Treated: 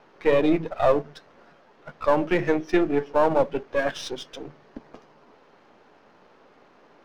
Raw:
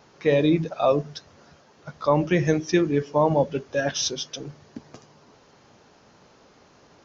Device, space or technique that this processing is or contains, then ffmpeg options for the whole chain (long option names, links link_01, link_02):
crystal radio: -af "highpass=240,lowpass=2600,aeval=exprs='if(lt(val(0),0),0.447*val(0),val(0))':channel_layout=same,volume=3.5dB"